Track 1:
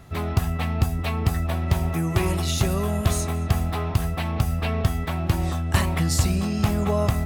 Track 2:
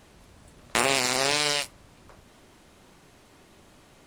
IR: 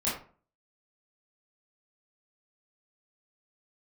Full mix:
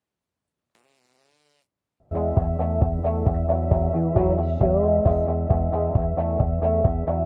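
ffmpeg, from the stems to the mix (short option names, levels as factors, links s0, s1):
-filter_complex "[0:a]lowpass=f=620:t=q:w=4.9,adelay=2000,volume=1.06[s0];[1:a]highpass=91,acrossover=split=750|5600[s1][s2][s3];[s1]acompressor=threshold=0.02:ratio=4[s4];[s2]acompressor=threshold=0.0158:ratio=4[s5];[s3]acompressor=threshold=0.00631:ratio=4[s6];[s4][s5][s6]amix=inputs=3:normalize=0,volume=0.178[s7];[s0][s7]amix=inputs=2:normalize=0,agate=range=0.158:threshold=0.0112:ratio=16:detection=peak"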